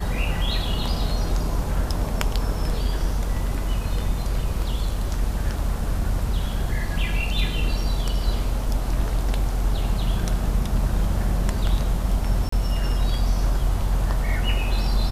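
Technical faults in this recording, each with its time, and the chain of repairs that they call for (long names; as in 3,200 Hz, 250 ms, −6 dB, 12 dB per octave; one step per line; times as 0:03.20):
0:12.49–0:12.52: drop-out 34 ms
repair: repair the gap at 0:12.49, 34 ms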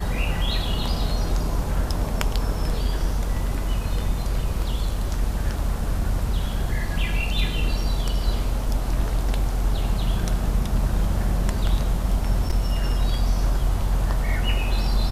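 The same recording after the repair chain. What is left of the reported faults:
none of them is left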